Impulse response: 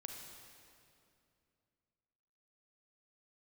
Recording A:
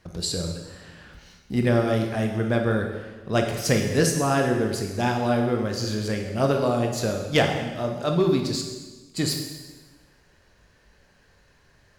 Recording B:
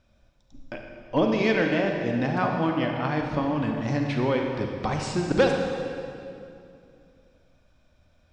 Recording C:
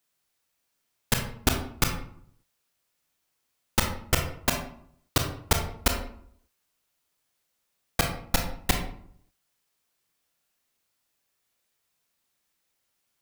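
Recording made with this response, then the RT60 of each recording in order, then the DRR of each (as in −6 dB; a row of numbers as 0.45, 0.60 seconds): B; 1.2, 2.6, 0.65 seconds; 2.5, 2.0, 2.5 decibels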